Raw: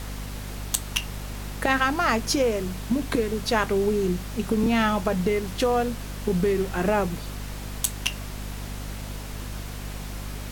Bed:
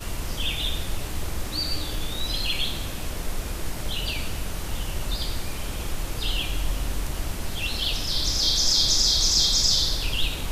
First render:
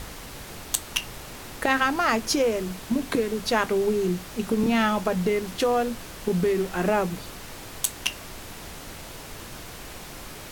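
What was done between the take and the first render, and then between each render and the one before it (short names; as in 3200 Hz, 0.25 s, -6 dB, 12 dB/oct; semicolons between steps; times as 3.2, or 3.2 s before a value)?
notches 50/100/150/200/250 Hz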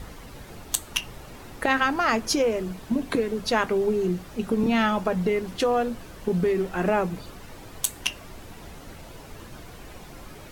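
denoiser 9 dB, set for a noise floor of -41 dBFS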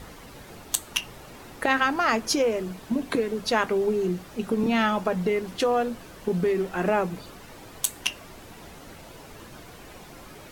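low shelf 100 Hz -8.5 dB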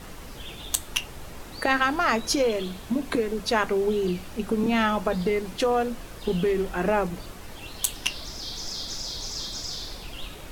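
add bed -13.5 dB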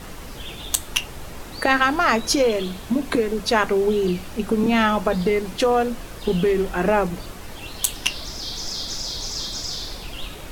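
gain +4.5 dB; limiter -3 dBFS, peak gain reduction 1 dB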